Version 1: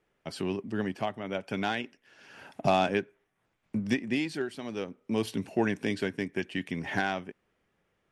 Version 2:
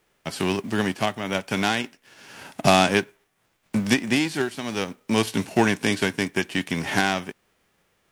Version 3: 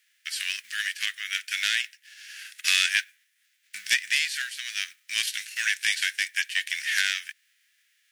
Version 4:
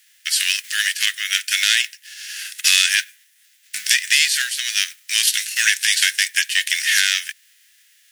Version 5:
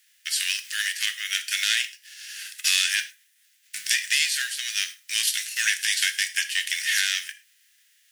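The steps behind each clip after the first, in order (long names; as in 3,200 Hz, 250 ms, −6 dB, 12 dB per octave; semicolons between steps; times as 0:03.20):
spectral envelope flattened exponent 0.6; level +7.5 dB
elliptic high-pass filter 1,700 Hz, stop band 50 dB; in parallel at −5 dB: soft clipping −20 dBFS, distortion −11 dB
high-shelf EQ 3,300 Hz +10.5 dB; notch filter 2,300 Hz, Q 22; boost into a limiter +7 dB; level −1 dB
reverb whose tail is shaped and stops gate 140 ms falling, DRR 9 dB; level −7 dB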